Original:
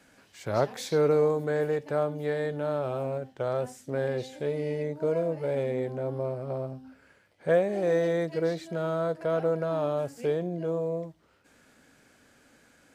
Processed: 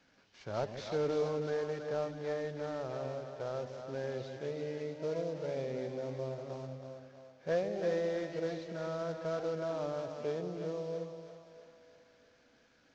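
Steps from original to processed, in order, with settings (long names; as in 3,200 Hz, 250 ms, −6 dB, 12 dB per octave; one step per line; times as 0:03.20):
variable-slope delta modulation 32 kbit/s
echo with a time of its own for lows and highs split 520 Hz, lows 150 ms, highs 325 ms, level −7 dB
level −9 dB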